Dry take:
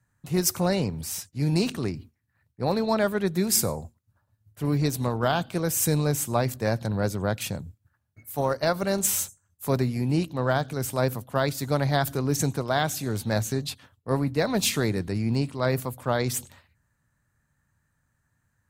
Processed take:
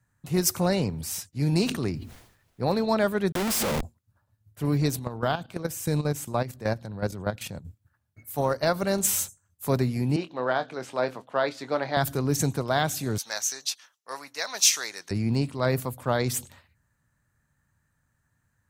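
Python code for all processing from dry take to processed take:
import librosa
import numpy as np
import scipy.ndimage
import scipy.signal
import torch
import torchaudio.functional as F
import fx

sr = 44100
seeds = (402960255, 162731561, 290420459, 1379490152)

y = fx.notch(x, sr, hz=7800.0, q=19.0, at=(1.68, 2.67), fade=0.02)
y = fx.dmg_noise_colour(y, sr, seeds[0], colour='pink', level_db=-71.0, at=(1.68, 2.67), fade=0.02)
y = fx.sustainer(y, sr, db_per_s=79.0, at=(1.68, 2.67), fade=0.02)
y = fx.chain(y, sr, fx.steep_highpass(hz=190.0, slope=36),
    fx.schmitt(flips_db=-37.5), at=(3.32, 3.83))
y = fx.chain(y, sr, fx.high_shelf(hz=5000.0, db=-4.0),
    fx.level_steps(step_db=12), at=(4.99, 7.65))
y = fx.chain(y, sr, fx.bandpass_edges(low_hz=350.0, high_hz=3800.0),
    fx.doubler(ms=24.0, db=-11.0), at=(10.16, 11.97))
y = fx.chain(y, sr, fx.highpass(hz=1100.0, slope=12),
    fx.peak_eq(hz=5900.0, db=14.0, octaves=0.42), at=(13.18, 15.11))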